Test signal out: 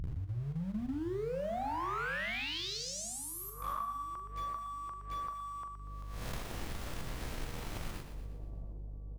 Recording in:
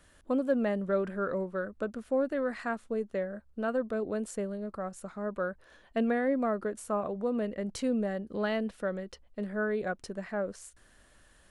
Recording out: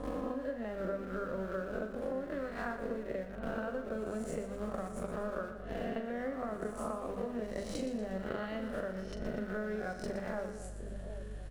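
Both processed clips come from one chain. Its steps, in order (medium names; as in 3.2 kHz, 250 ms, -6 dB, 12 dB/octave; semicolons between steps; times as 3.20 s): reverse spectral sustain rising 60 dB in 0.96 s; transient shaper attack +10 dB, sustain -4 dB; hum notches 50/100/150/200/250 Hz; mains buzz 50 Hz, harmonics 6, -52 dBFS -8 dB/octave; in parallel at -6 dB: small samples zeroed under -33.5 dBFS; on the sum: bass shelf 130 Hz +8.5 dB; compression 12:1, threshold -35 dBFS; treble shelf 4.6 kHz -6.5 dB; doubling 42 ms -9 dB; two-band feedback delay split 690 Hz, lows 766 ms, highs 119 ms, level -9.5 dB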